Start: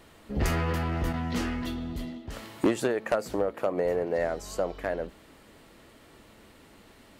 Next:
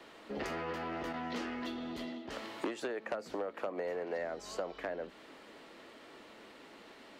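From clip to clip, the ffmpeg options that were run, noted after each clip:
-filter_complex "[0:a]acrossover=split=230 6100:gain=0.1 1 0.2[a][b][c];[a][b][c]amix=inputs=3:normalize=0,acrossover=split=230|900[d][e][f];[d]acompressor=threshold=-53dB:ratio=4[g];[e]acompressor=threshold=-42dB:ratio=4[h];[f]acompressor=threshold=-46dB:ratio=4[i];[g][h][i]amix=inputs=3:normalize=0,volume=2dB"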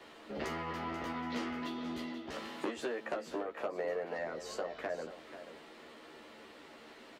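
-filter_complex "[0:a]asplit=2[a][b];[b]adelay=13,volume=-3dB[c];[a][c]amix=inputs=2:normalize=0,aecho=1:1:486:0.266,volume=-1.5dB"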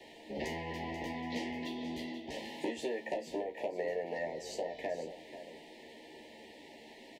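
-filter_complex "[0:a]asuperstop=centerf=1300:order=20:qfactor=1.7,asplit=2[a][b];[b]adelay=35,volume=-12dB[c];[a][c]amix=inputs=2:normalize=0,volume=1dB"

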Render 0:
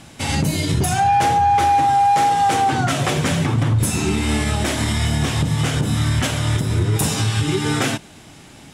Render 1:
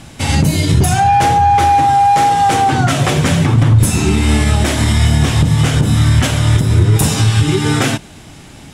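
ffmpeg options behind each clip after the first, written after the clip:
-af "lowshelf=f=100:g=8.5,volume=4.5dB"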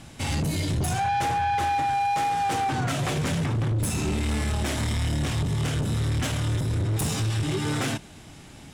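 -af "asoftclip=type=tanh:threshold=-13dB,volume=-9dB"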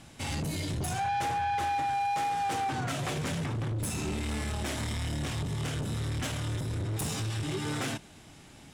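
-af "lowshelf=f=190:g=-3.5,volume=-5dB"

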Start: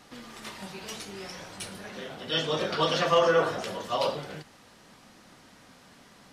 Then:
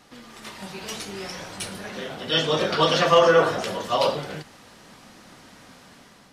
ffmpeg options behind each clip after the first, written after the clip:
-af "dynaudnorm=f=260:g=5:m=6dB"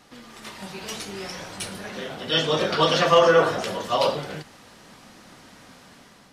-af anull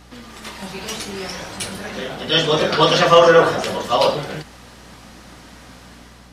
-af "aeval=exprs='val(0)+0.00251*(sin(2*PI*60*n/s)+sin(2*PI*2*60*n/s)/2+sin(2*PI*3*60*n/s)/3+sin(2*PI*4*60*n/s)/4+sin(2*PI*5*60*n/s)/5)':c=same,volume=5.5dB"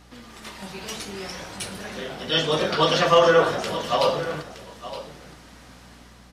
-af "aecho=1:1:918:0.211,volume=-5.5dB"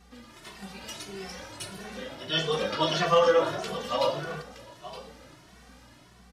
-filter_complex "[0:a]asplit=2[a][b];[b]adelay=2.2,afreqshift=1.6[c];[a][c]amix=inputs=2:normalize=1,volume=-3dB"

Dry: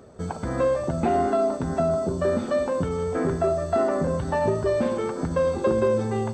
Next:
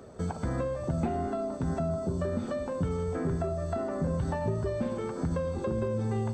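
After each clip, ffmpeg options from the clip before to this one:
-filter_complex "[0:a]acrossover=split=190[a][b];[b]acompressor=threshold=-35dB:ratio=3[c];[a][c]amix=inputs=2:normalize=0"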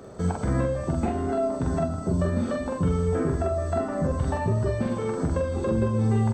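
-filter_complex "[0:a]asplit=2[a][b];[b]adelay=45,volume=-2.5dB[c];[a][c]amix=inputs=2:normalize=0,volume=4dB"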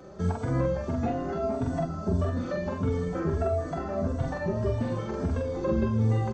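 -filter_complex "[0:a]aecho=1:1:458:0.282,aresample=16000,aresample=44100,asplit=2[a][b];[b]adelay=3.5,afreqshift=1.6[c];[a][c]amix=inputs=2:normalize=1"

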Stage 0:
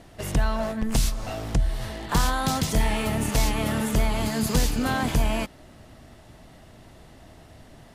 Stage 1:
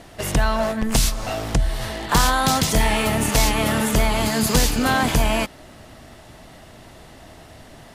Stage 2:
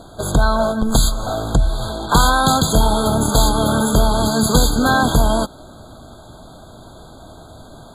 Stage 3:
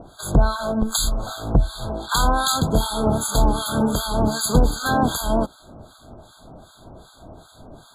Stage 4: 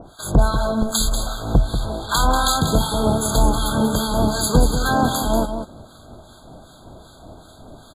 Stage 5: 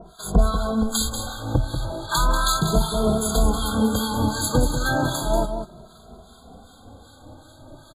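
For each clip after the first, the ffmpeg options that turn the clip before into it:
-af "lowshelf=f=360:g=-5.5,volume=8dB"
-af "afftfilt=real='re*eq(mod(floor(b*sr/1024/1600),2),0)':imag='im*eq(mod(floor(b*sr/1024/1600),2),0)':win_size=1024:overlap=0.75,volume=4.5dB"
-filter_complex "[0:a]acrossover=split=1100[a][b];[a]aeval=exprs='val(0)*(1-1/2+1/2*cos(2*PI*2.6*n/s))':c=same[c];[b]aeval=exprs='val(0)*(1-1/2-1/2*cos(2*PI*2.6*n/s))':c=same[d];[c][d]amix=inputs=2:normalize=0"
-af "aecho=1:1:189:0.398,volume=1dB"
-filter_complex "[0:a]asplit=2[a][b];[b]adelay=2.5,afreqshift=0.34[c];[a][c]amix=inputs=2:normalize=1"

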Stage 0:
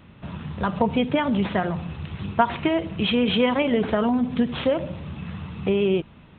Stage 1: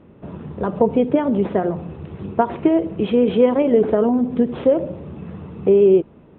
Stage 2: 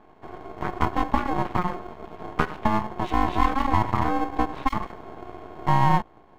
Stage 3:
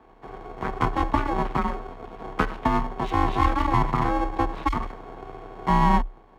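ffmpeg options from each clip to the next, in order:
-af "lowpass=f=1.3k:p=1,equalizer=f=410:w=0.87:g=14,volume=-3.5dB"
-af "aeval=exprs='val(0)*sin(2*PI*540*n/s)':c=same,aeval=exprs='max(val(0),0)':c=same"
-af "afreqshift=32"

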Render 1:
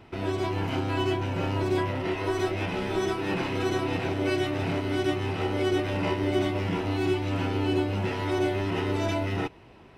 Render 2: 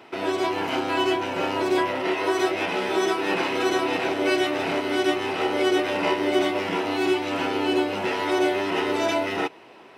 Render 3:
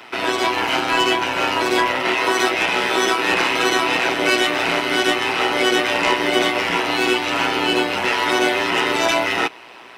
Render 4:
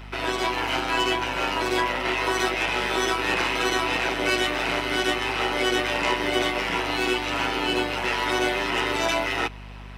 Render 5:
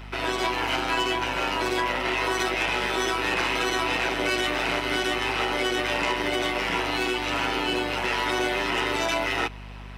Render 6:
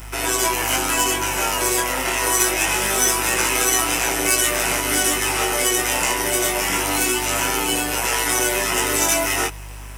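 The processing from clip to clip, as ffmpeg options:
-af "highpass=360,volume=7dB"
-filter_complex "[0:a]tremolo=f=120:d=0.621,acrossover=split=340|940[a][b][c];[c]aeval=exprs='0.15*sin(PI/2*2*val(0)/0.15)':c=same[d];[a][b][d]amix=inputs=3:normalize=0,volume=4dB"
-af "aeval=exprs='val(0)+0.0224*(sin(2*PI*50*n/s)+sin(2*PI*2*50*n/s)/2+sin(2*PI*3*50*n/s)/3+sin(2*PI*4*50*n/s)/4+sin(2*PI*5*50*n/s)/5)':c=same,volume=-6dB"
-af "alimiter=limit=-16dB:level=0:latency=1:release=53"
-af "aexciter=amount=10.3:drive=5.6:freq=6k,flanger=delay=17.5:depth=5.2:speed=0.25,volume=6.5dB"

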